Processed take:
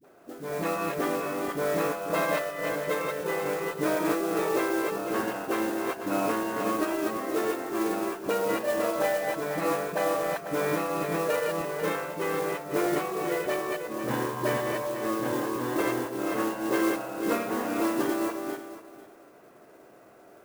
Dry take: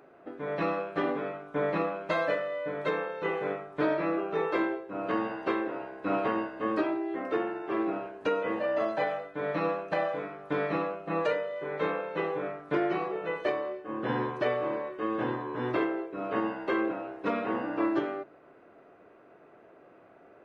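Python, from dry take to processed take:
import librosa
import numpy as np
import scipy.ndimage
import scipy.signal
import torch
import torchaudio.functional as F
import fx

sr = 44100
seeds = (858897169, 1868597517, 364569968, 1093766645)

y = fx.reverse_delay_fb(x, sr, ms=247, feedback_pct=40, wet_db=-2)
y = fx.dispersion(y, sr, late='highs', ms=47.0, hz=450.0)
y = fx.mod_noise(y, sr, seeds[0], snr_db=15)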